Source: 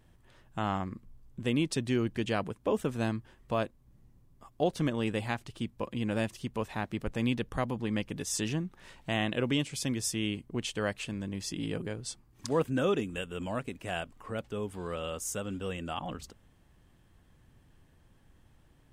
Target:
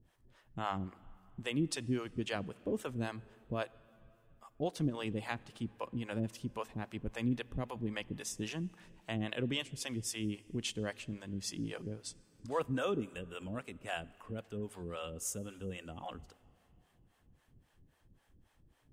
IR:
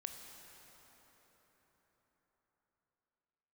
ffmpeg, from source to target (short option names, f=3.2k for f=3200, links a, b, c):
-filter_complex "[0:a]acrossover=split=460[a][b];[a]aeval=exprs='val(0)*(1-1/2+1/2*cos(2*PI*3.7*n/s))':c=same[c];[b]aeval=exprs='val(0)*(1-1/2-1/2*cos(2*PI*3.7*n/s))':c=same[d];[c][d]amix=inputs=2:normalize=0,asplit=2[e][f];[1:a]atrim=start_sample=2205,asetrate=70560,aresample=44100[g];[f][g]afir=irnorm=-1:irlink=0,volume=-8dB[h];[e][h]amix=inputs=2:normalize=0,volume=-2.5dB"